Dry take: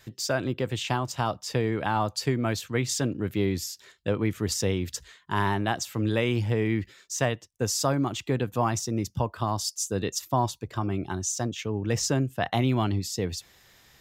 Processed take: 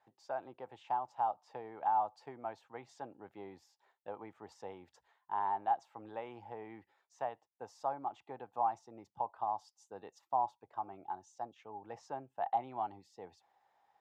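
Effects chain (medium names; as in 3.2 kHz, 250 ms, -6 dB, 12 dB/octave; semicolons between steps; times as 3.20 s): band-pass filter 820 Hz, Q 8.7; trim +2 dB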